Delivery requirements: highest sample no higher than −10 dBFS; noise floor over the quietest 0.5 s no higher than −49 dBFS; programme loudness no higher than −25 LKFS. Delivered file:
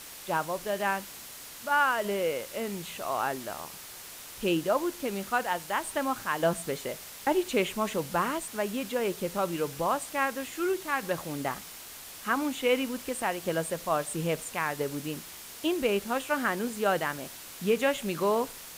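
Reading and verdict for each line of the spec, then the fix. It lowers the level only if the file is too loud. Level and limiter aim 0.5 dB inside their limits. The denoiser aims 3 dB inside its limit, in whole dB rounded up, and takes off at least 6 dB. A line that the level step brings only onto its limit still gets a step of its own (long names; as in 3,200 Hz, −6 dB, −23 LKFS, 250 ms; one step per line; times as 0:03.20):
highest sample −14.0 dBFS: in spec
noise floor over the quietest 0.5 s −45 dBFS: out of spec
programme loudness −30.0 LKFS: in spec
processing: broadband denoise 7 dB, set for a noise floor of −45 dBFS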